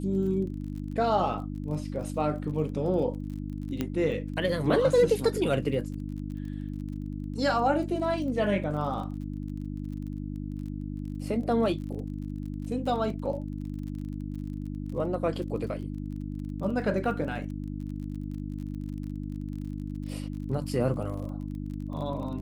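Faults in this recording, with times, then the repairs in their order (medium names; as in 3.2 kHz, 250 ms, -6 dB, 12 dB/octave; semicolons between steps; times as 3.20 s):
crackle 35 per s -39 dBFS
hum 50 Hz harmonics 6 -35 dBFS
3.81 s: pop -16 dBFS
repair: de-click; de-hum 50 Hz, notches 6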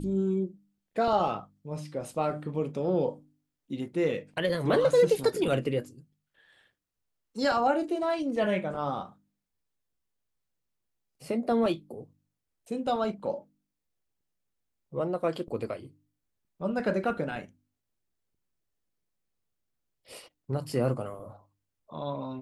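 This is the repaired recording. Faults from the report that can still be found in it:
nothing left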